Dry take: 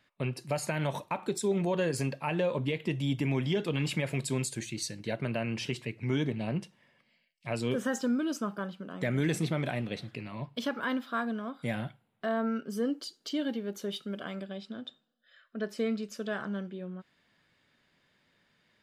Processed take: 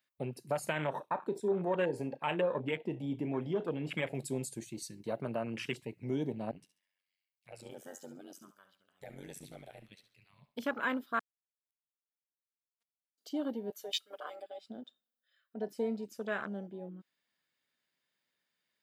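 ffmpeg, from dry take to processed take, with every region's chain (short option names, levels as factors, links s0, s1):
-filter_complex "[0:a]asettb=1/sr,asplit=3[s0][s1][s2];[s0]atrim=end=0.734[s3];[s1]atrim=start=0.73:end=4.15,asetpts=PTS-STARTPTS,afade=t=in:d=0.004:c=qsin,afade=t=out:st=3.416:d=0.004:c=qsin,bass=f=250:g=-2,treble=f=4000:g=-14,asplit=2[s4][s5];[s5]adelay=33,volume=0.224[s6];[s4][s6]amix=inputs=2:normalize=0,atrim=end_sample=150822,aecho=1:1:71:0.0841,atrim=end_sample=150822[s7];[s2]atrim=start=4.146[s8];[s3][s7]acrossfade=d=0.004:c1=hsin:c2=qsin[s9];[s9][s8]acrossfade=d=0.004:c1=qsin:c2=hsin,asettb=1/sr,asplit=3[s10][s11][s12];[s10]atrim=end=6.514[s13];[s11]atrim=start=6.51:end=10.55,asetpts=PTS-STARTPTS,afade=t=in:d=0.004:c=qsin,afade=t=out:st=4.036:d=0.004:c=qsin,equalizer=f=260:t=o:w=2.9:g=-14,tremolo=f=94:d=0.919,aecho=1:1:69|138|207:0.282|0.0902|0.0289,atrim=end_sample=178164[s14];[s12]atrim=start=10.546[s15];[s13][s14]acrossfade=d=0.004:c1=hsin:c2=qsin[s16];[s16][s15]acrossfade=d=0.004:c1=qsin:c2=hsin,asettb=1/sr,asplit=3[s17][s18][s19];[s17]atrim=end=11.194[s20];[s18]atrim=start=11.19:end=13.18,asetpts=PTS-STARTPTS,afade=t=in:d=0.004:c=qsin,afade=t=out:st=1.986:d=0.004:c=qsin,aecho=1:1:2.4:0.31,atrim=end_sample=87759,acrusher=bits=2:mix=0:aa=0.5[s21];[s19]atrim=start=13.176[s22];[s20][s21]acrossfade=d=0.004:c1=hsin:c2=qsin[s23];[s23][s22]acrossfade=d=0.004:c1=qsin:c2=hsin,asettb=1/sr,asplit=3[s24][s25][s26];[s24]atrim=end=13.704[s27];[s25]atrim=start=13.7:end=14.68,asetpts=PTS-STARTPTS,afade=t=in:d=0.004:c=qsin,afade=t=out:st=0.976:d=0.004:c=qsin,highpass=630,aecho=1:1:6.7:0.92,atrim=end_sample=43218[s28];[s26]atrim=start=14.676[s29];[s27][s28]acrossfade=d=0.004:c1=hsin:c2=qsin[s30];[s30][s29]acrossfade=d=0.004:c1=qsin:c2=hsin,afwtdn=0.0126,aemphasis=mode=production:type=bsi"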